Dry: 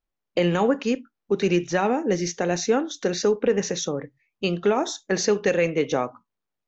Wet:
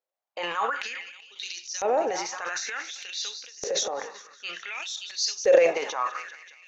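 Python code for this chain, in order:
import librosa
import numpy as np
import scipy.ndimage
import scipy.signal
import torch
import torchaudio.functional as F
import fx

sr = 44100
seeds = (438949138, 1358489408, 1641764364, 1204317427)

y = fx.echo_heads(x, sr, ms=193, heads='all three', feedback_pct=42, wet_db=-23)
y = fx.filter_lfo_highpass(y, sr, shape='saw_up', hz=0.55, low_hz=500.0, high_hz=6100.0, q=4.8)
y = fx.transient(y, sr, attack_db=-5, sustain_db=10)
y = y * 10.0 ** (-5.5 / 20.0)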